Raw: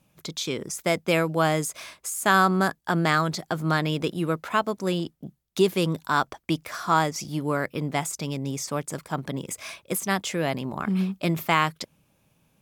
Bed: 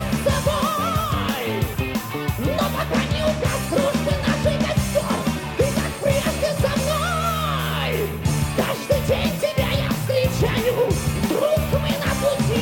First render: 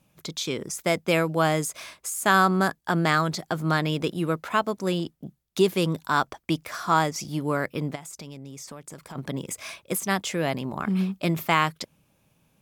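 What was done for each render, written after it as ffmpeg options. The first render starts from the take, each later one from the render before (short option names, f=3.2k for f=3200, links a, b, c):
-filter_complex "[0:a]asplit=3[a][b][c];[a]afade=t=out:st=7.94:d=0.02[d];[b]acompressor=threshold=-37dB:ratio=6:attack=3.2:release=140:knee=1:detection=peak,afade=t=in:st=7.94:d=0.02,afade=t=out:st=9.15:d=0.02[e];[c]afade=t=in:st=9.15:d=0.02[f];[d][e][f]amix=inputs=3:normalize=0"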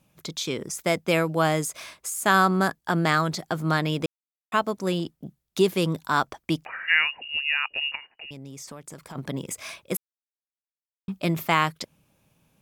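-filter_complex "[0:a]asettb=1/sr,asplit=3[a][b][c];[a]atrim=end=6.654[d];[b]atrim=start=6.65:end=8.31,asetpts=PTS-STARTPTS,afade=t=in:d=0.004:c=qsin,afade=t=out:st=1.656:d=0.004:c=qsin,lowpass=f=2.6k:t=q:w=0.5098,lowpass=f=2.6k:t=q:w=0.6013,lowpass=f=2.6k:t=q:w=0.9,lowpass=f=2.6k:t=q:w=2.563,afreqshift=-3000[e];[c]atrim=start=8.306[f];[d][e]acrossfade=d=0.004:c1=hsin:c2=qsin[g];[g][f]acrossfade=d=0.004:c1=qsin:c2=hsin,asplit=5[h][i][j][k][l];[h]atrim=end=4.06,asetpts=PTS-STARTPTS,afade=t=out:st=4.056:d=0.004:c=hsin[m];[i]atrim=start=4.06:end=4.52,asetpts=PTS-STARTPTS,volume=0[n];[j]atrim=start=4.52:end=9.97,asetpts=PTS-STARTPTS,afade=t=in:d=0.004:c=hsin,afade=t=out:st=5.446:d=0.004:c=hsin[o];[k]atrim=start=9.97:end=11.08,asetpts=PTS-STARTPTS,volume=0[p];[l]atrim=start=11.08,asetpts=PTS-STARTPTS,afade=t=in:d=0.004:c=hsin[q];[m][n][o][p][q]concat=n=5:v=0:a=1"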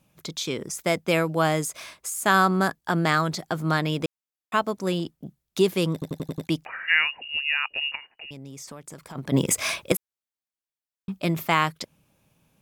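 -filter_complex "[0:a]asplit=9[a][b][c][d][e][f][g][h][i];[a]atrim=end=6.022[j];[b]atrim=start=5.928:end=6.022[k];[c]atrim=start=5.928:end=6.022[l];[d]atrim=start=5.928:end=6.022[m];[e]atrim=start=5.928:end=6.022[n];[f]atrim=start=5.928:end=6.022[o];[g]atrim=start=6.468:end=9.322[p];[h]atrim=start=9.318:end=9.922,asetpts=PTS-STARTPTS,volume=11dB[q];[i]atrim=start=9.918[r];[j][k]acrossfade=d=0.004:c1=hsin:c2=hsin[s];[s][l]acrossfade=d=0.004:c1=hsin:c2=hsin[t];[t][m]acrossfade=d=0.004:c1=hsin:c2=hsin[u];[u][n]acrossfade=d=0.004:c1=hsin:c2=hsin[v];[v][o]acrossfade=d=0.004:c1=hsin:c2=hsin[w];[w][p]acrossfade=d=0.004:c1=hsin:c2=hsin[x];[x][q]acrossfade=d=0.004:c1=hsin:c2=hsin[y];[y][r]acrossfade=d=0.004:c1=hsin:c2=hsin"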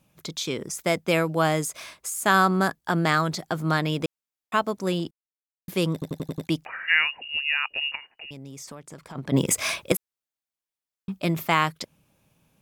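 -filter_complex "[0:a]asettb=1/sr,asplit=3[a][b][c];[a]atrim=end=8.754[d];[b]atrim=start=8.75:end=9.36,asetpts=PTS-STARTPTS,afade=t=in:d=0.004:c=qsin,afade=t=out:st=0.606:d=0.004:c=qsin,highshelf=f=9.2k:g=-10[e];[c]atrim=start=9.356[f];[d][e]acrossfade=d=0.004:c1=hsin:c2=qsin[g];[g][f]acrossfade=d=0.004:c1=qsin:c2=hsin,asplit=3[h][i][j];[h]atrim=end=5.11,asetpts=PTS-STARTPTS,afade=t=out:st=5.106:d=0.004:c=hsin[k];[i]atrim=start=5.11:end=5.68,asetpts=PTS-STARTPTS,volume=0[l];[j]atrim=start=5.68,asetpts=PTS-STARTPTS,afade=t=in:d=0.004:c=hsin[m];[k][l][m]concat=n=3:v=0:a=1"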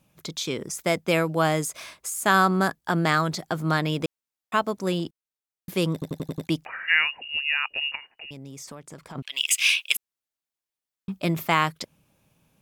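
-filter_complex "[0:a]asettb=1/sr,asplit=3[a][b][c];[a]atrim=end=9.224[d];[b]atrim=start=9.22:end=9.96,asetpts=PTS-STARTPTS,afade=t=in:d=0.004:c=qsin,afade=t=out:st=0.736:d=0.004:c=qsin,highpass=f=2.8k:t=q:w=6.4[e];[c]atrim=start=9.956[f];[d][e]acrossfade=d=0.004:c1=hsin:c2=qsin[g];[g][f]acrossfade=d=0.004:c1=qsin:c2=hsin"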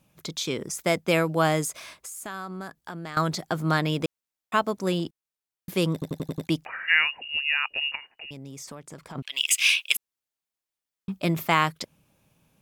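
-filter_complex "[0:a]asettb=1/sr,asplit=3[a][b][c];[a]atrim=end=1.744[d];[b]atrim=start=1.74:end=3.17,asetpts=PTS-STARTPTS,afade=t=in:d=0.004:c=qsin,afade=t=out:st=1.426:d=0.004:c=qsin,acompressor=threshold=-38dB:ratio=3:attack=3.2:release=140:knee=1:detection=peak[e];[c]atrim=start=3.166[f];[d][e]acrossfade=d=0.004:c1=hsin:c2=qsin[g];[g][f]acrossfade=d=0.004:c1=qsin:c2=hsin"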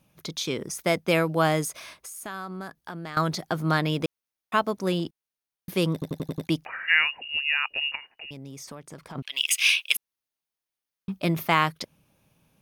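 -af "bandreject=f=7.5k:w=5.9"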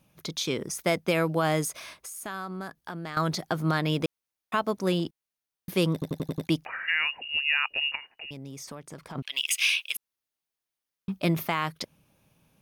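-af "alimiter=limit=-14dB:level=0:latency=1:release=122"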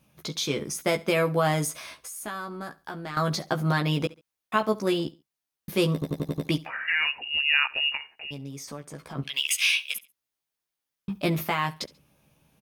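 -filter_complex "[0:a]asplit=2[a][b];[b]adelay=14,volume=-4dB[c];[a][c]amix=inputs=2:normalize=0,aecho=1:1:69|138:0.0944|0.0264"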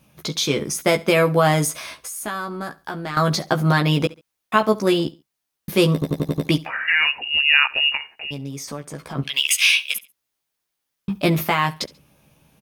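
-af "volume=7dB"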